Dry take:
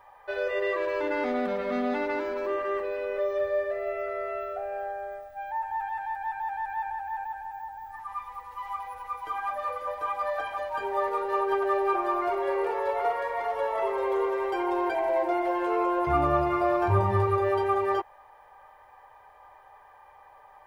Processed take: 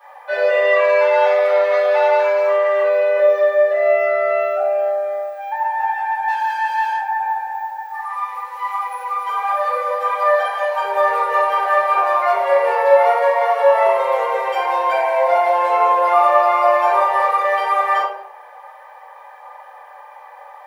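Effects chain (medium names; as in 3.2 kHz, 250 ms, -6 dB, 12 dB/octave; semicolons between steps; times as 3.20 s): 6.28–6.97 s: comb filter that takes the minimum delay 5.7 ms; steep high-pass 470 Hz 72 dB/octave; simulated room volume 98 m³, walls mixed, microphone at 2.4 m; trim +4 dB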